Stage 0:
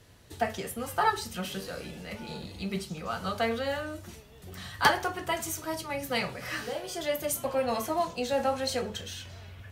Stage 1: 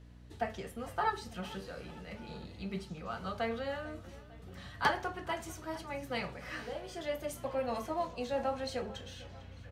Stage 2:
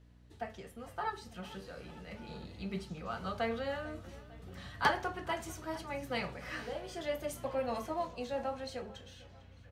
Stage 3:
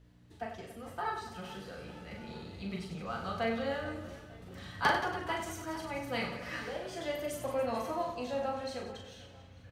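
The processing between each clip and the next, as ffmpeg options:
-af "aemphasis=mode=reproduction:type=50kf,aecho=1:1:449|898|1347|1796:0.112|0.0561|0.0281|0.014,aeval=exprs='val(0)+0.00447*(sin(2*PI*60*n/s)+sin(2*PI*2*60*n/s)/2+sin(2*PI*3*60*n/s)/3+sin(2*PI*4*60*n/s)/4+sin(2*PI*5*60*n/s)/5)':c=same,volume=-6dB"
-af "dynaudnorm=f=220:g=17:m=6.5dB,volume=-6dB"
-af "aecho=1:1:40|96|174.4|284.2|437.8:0.631|0.398|0.251|0.158|0.1"

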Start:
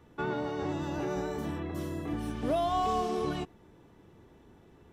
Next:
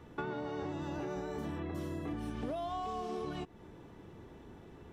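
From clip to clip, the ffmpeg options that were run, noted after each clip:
-af "acompressor=threshold=-40dB:ratio=10,highshelf=f=7.5k:g=-6,volume=4.5dB"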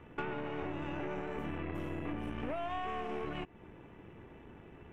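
-af "aeval=exprs='0.0562*(cos(1*acos(clip(val(0)/0.0562,-1,1)))-cos(1*PI/2))+0.00562*(cos(8*acos(clip(val(0)/0.0562,-1,1)))-cos(8*PI/2))':c=same,highshelf=f=3.4k:t=q:w=3:g=-8.5,volume=-1dB"

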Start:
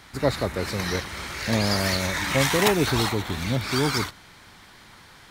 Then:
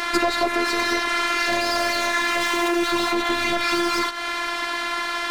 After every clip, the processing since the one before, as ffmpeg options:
-filter_complex "[0:a]asplit=2[a][b];[b]highpass=f=720:p=1,volume=29dB,asoftclip=type=tanh:threshold=-5.5dB[c];[a][c]amix=inputs=2:normalize=0,lowpass=f=2k:p=1,volume=-6dB,afftfilt=real='hypot(re,im)*cos(PI*b)':imag='0':win_size=512:overlap=0.75,acompressor=threshold=-24dB:ratio=12,volume=8.5dB"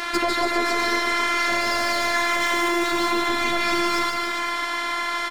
-af "aecho=1:1:150|285|406.5|515.8|614.3:0.631|0.398|0.251|0.158|0.1,volume=-2.5dB"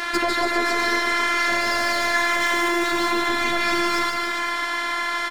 -af "equalizer=f=1.7k:t=o:w=0.23:g=4.5"

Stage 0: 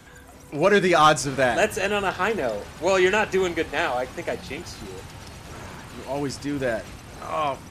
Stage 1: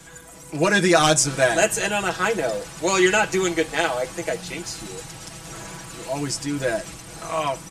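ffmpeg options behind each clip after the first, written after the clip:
-af "equalizer=f=8k:t=o:w=1.2:g=11,aecho=1:1:6.1:0.82,volume=-1dB"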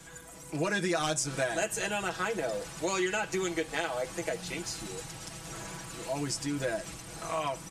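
-af "acompressor=threshold=-24dB:ratio=3,volume=-5dB"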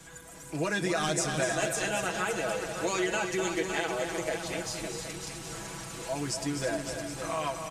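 -af "aecho=1:1:248|312|561|768:0.398|0.282|0.398|0.237"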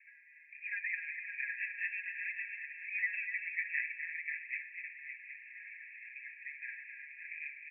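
-af "asuperpass=centerf=2100:order=20:qfactor=2.3,volume=2.5dB"

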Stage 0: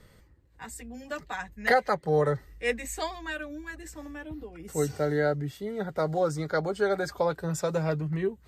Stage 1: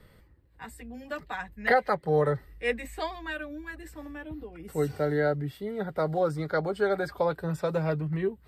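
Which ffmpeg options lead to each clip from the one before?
-filter_complex "[0:a]equalizer=f=6.5k:t=o:w=0.54:g=-13,acrossover=split=700|4300[a][b][c];[c]alimiter=level_in=18dB:limit=-24dB:level=0:latency=1:release=94,volume=-18dB[d];[a][b][d]amix=inputs=3:normalize=0"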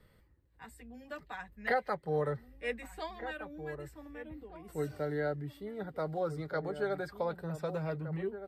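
-filter_complex "[0:a]asplit=2[a][b];[b]adelay=1516,volume=-10dB,highshelf=f=4k:g=-34.1[c];[a][c]amix=inputs=2:normalize=0,volume=-8dB"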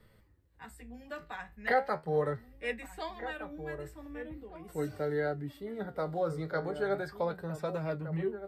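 -af "flanger=delay=9:depth=9.5:regen=63:speed=0.39:shape=sinusoidal,volume=6dB"

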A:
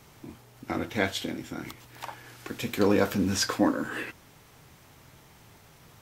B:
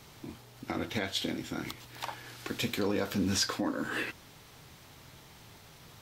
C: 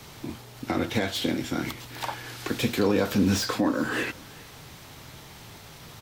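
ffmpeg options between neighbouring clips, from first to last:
-af "alimiter=limit=-21dB:level=0:latency=1:release=256,equalizer=f=4k:t=o:w=0.9:g=5.5"
-filter_complex "[0:a]acrossover=split=170|900[a][b][c];[c]asoftclip=type=tanh:threshold=-34.5dB[d];[a][b][d]amix=inputs=3:normalize=0,aecho=1:1:392:0.0631,volume=8dB"

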